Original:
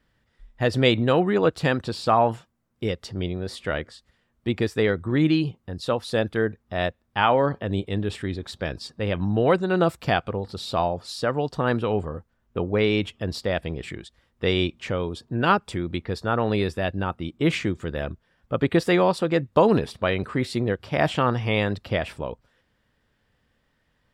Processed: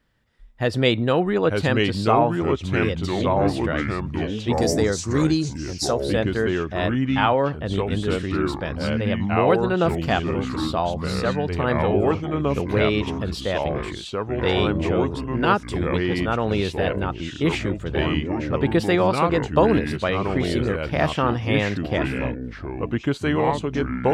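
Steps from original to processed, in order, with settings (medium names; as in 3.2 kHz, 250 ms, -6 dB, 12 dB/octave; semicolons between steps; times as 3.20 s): ever faster or slower copies 779 ms, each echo -3 st, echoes 3; 4.53–6.00 s: resonant high shelf 4.2 kHz +12 dB, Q 3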